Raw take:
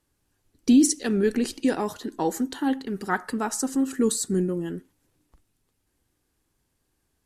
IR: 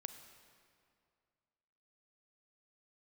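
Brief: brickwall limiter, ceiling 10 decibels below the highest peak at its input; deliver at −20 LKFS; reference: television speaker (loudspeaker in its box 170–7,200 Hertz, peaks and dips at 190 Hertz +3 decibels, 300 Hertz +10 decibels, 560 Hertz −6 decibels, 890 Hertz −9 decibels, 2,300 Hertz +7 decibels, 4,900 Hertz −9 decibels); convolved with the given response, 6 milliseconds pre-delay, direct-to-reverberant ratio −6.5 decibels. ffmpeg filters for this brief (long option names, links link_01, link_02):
-filter_complex "[0:a]alimiter=limit=-19dB:level=0:latency=1,asplit=2[link_01][link_02];[1:a]atrim=start_sample=2205,adelay=6[link_03];[link_02][link_03]afir=irnorm=-1:irlink=0,volume=10dB[link_04];[link_01][link_04]amix=inputs=2:normalize=0,highpass=frequency=170:width=0.5412,highpass=frequency=170:width=1.3066,equalizer=frequency=190:width_type=q:width=4:gain=3,equalizer=frequency=300:width_type=q:width=4:gain=10,equalizer=frequency=560:width_type=q:width=4:gain=-6,equalizer=frequency=890:width_type=q:width=4:gain=-9,equalizer=frequency=2300:width_type=q:width=4:gain=7,equalizer=frequency=4900:width_type=q:width=4:gain=-9,lowpass=frequency=7200:width=0.5412,lowpass=frequency=7200:width=1.3066,volume=-0.5dB"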